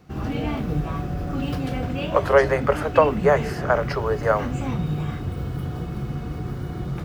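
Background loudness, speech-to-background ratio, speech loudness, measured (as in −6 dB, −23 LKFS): −28.0 LKFS, 6.5 dB, −21.5 LKFS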